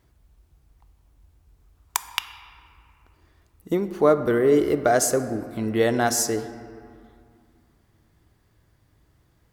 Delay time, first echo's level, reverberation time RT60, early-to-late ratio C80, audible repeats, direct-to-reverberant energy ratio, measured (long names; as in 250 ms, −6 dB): no echo audible, no echo audible, 2.3 s, 12.0 dB, no echo audible, 10.0 dB